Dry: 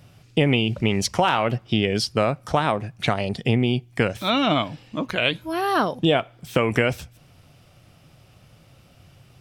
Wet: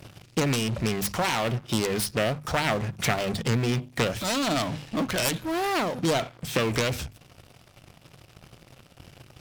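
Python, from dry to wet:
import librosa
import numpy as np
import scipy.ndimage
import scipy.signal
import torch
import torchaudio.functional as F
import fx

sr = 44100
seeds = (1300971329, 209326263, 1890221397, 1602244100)

p1 = fx.self_delay(x, sr, depth_ms=0.4)
p2 = fx.fuzz(p1, sr, gain_db=40.0, gate_db=-49.0)
p3 = p1 + (p2 * 10.0 ** (-11.0 / 20.0))
p4 = fx.hum_notches(p3, sr, base_hz=50, count=5)
p5 = fx.rider(p4, sr, range_db=3, speed_s=0.5)
y = p5 * 10.0 ** (-7.0 / 20.0)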